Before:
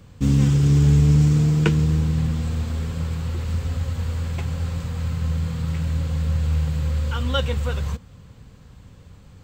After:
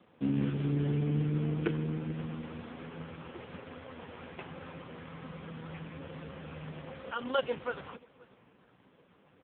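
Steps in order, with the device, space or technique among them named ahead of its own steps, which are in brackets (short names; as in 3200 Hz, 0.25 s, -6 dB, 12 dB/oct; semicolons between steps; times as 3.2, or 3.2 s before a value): satellite phone (BPF 310–3100 Hz; echo 0.531 s -23.5 dB; gain -2 dB; AMR-NB 4.75 kbps 8000 Hz)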